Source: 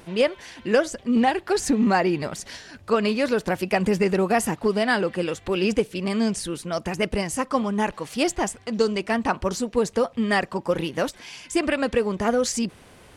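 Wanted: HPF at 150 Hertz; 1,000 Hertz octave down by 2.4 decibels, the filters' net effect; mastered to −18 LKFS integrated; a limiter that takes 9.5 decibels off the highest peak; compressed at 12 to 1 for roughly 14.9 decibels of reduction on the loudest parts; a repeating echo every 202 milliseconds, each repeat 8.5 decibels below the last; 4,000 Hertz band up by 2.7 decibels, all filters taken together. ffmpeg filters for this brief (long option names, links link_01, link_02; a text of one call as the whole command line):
ffmpeg -i in.wav -af "highpass=150,equalizer=frequency=1000:width_type=o:gain=-3.5,equalizer=frequency=4000:width_type=o:gain=4,acompressor=threshold=-31dB:ratio=12,alimiter=level_in=5.5dB:limit=-24dB:level=0:latency=1,volume=-5.5dB,aecho=1:1:202|404|606|808:0.376|0.143|0.0543|0.0206,volume=20dB" out.wav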